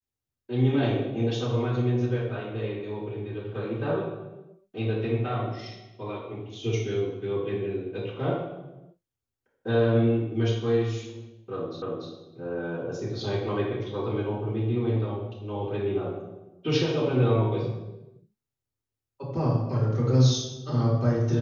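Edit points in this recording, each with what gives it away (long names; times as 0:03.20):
0:11.82: the same again, the last 0.29 s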